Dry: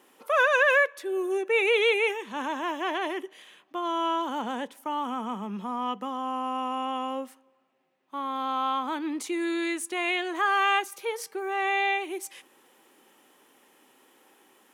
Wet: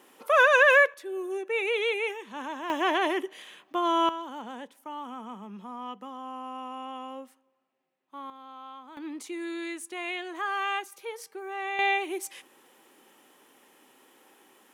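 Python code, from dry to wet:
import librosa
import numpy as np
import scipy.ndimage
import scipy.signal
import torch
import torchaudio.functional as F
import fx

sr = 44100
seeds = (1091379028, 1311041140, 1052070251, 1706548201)

y = fx.gain(x, sr, db=fx.steps((0.0, 2.5), (0.94, -5.0), (2.7, 4.0), (4.09, -8.0), (8.3, -17.0), (8.97, -6.5), (11.79, 1.0)))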